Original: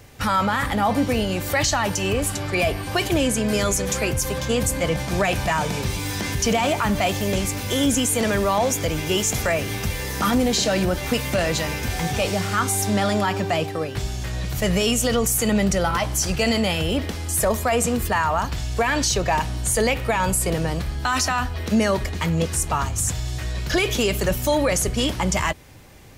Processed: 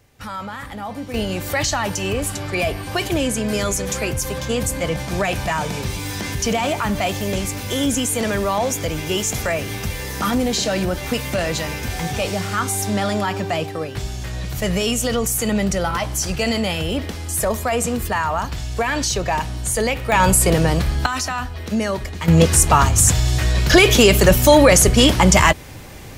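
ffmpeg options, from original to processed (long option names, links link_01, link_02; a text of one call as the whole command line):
ffmpeg -i in.wav -af "asetnsamples=nb_out_samples=441:pad=0,asendcmd='1.14 volume volume 0dB;20.12 volume volume 7dB;21.06 volume volume -2dB;22.28 volume volume 9.5dB',volume=-9.5dB" out.wav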